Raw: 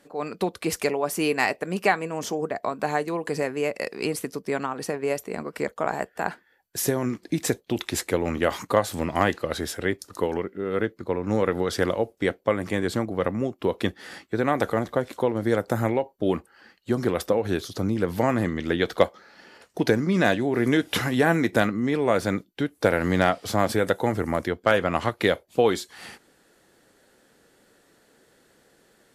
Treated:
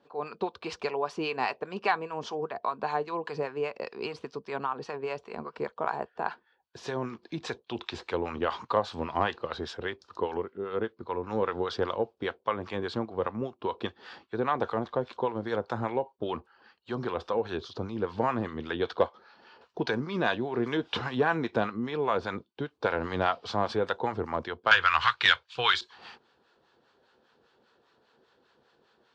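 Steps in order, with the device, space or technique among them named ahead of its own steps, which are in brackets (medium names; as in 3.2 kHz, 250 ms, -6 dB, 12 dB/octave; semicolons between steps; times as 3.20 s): 24.71–25.81 s: FFT filter 130 Hz 0 dB, 200 Hz -16 dB, 640 Hz -9 dB, 1.5 kHz +15 dB; guitar amplifier with harmonic tremolo (harmonic tremolo 5 Hz, depth 70%, crossover 800 Hz; saturation -7.5 dBFS, distortion -16 dB; cabinet simulation 86–4400 Hz, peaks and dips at 110 Hz -6 dB, 180 Hz -9 dB, 290 Hz -9 dB, 590 Hz -5 dB, 990 Hz +6 dB, 2 kHz -10 dB)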